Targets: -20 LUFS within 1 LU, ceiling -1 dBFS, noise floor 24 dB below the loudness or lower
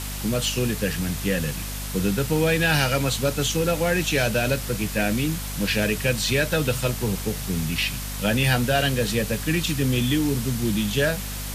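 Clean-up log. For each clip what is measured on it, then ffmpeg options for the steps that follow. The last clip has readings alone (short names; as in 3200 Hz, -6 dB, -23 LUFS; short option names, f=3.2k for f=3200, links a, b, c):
hum 50 Hz; harmonics up to 250 Hz; hum level -31 dBFS; noise floor -31 dBFS; noise floor target -48 dBFS; loudness -23.5 LUFS; peak -8.0 dBFS; loudness target -20.0 LUFS
-> -af "bandreject=f=50:t=h:w=6,bandreject=f=100:t=h:w=6,bandreject=f=150:t=h:w=6,bandreject=f=200:t=h:w=6,bandreject=f=250:t=h:w=6"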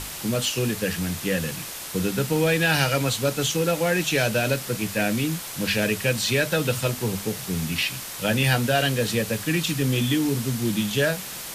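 hum none; noise floor -35 dBFS; noise floor target -48 dBFS
-> -af "afftdn=nr=13:nf=-35"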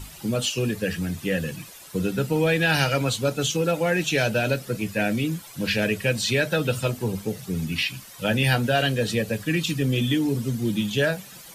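noise floor -44 dBFS; noise floor target -49 dBFS
-> -af "afftdn=nr=6:nf=-44"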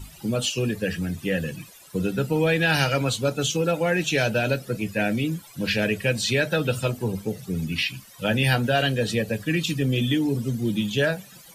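noise floor -48 dBFS; noise floor target -49 dBFS
-> -af "afftdn=nr=6:nf=-48"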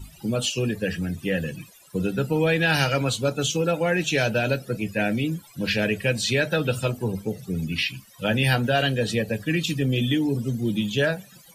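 noise floor -51 dBFS; loudness -24.5 LUFS; peak -7.5 dBFS; loudness target -20.0 LUFS
-> -af "volume=4.5dB"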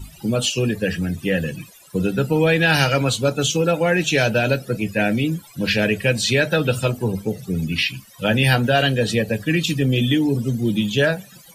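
loudness -20.0 LUFS; peak -3.0 dBFS; noise floor -46 dBFS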